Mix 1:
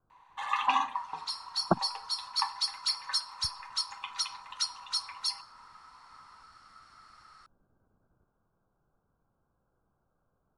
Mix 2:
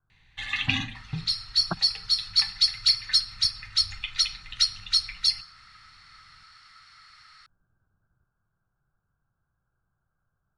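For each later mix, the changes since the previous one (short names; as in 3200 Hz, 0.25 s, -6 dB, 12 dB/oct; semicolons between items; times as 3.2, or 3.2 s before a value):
first sound: remove resonant high-pass 1000 Hz, resonance Q 6.6; master: add graphic EQ 125/250/500/1000/2000/4000 Hz +4/-9/-10/-7/+11/+10 dB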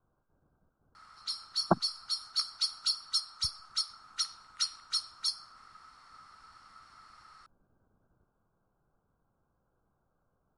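first sound: muted; master: add graphic EQ 125/250/500/1000/2000/4000 Hz -4/+9/+10/+7/-11/-10 dB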